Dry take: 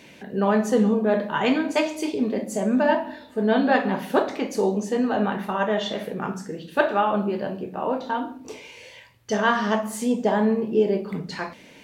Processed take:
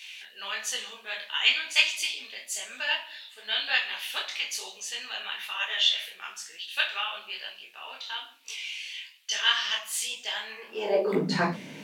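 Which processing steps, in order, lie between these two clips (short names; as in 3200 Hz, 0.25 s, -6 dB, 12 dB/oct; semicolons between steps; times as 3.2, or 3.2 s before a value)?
high-pass sweep 2900 Hz -> 150 Hz, 10.49–11.41; detuned doubles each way 37 cents; gain +7.5 dB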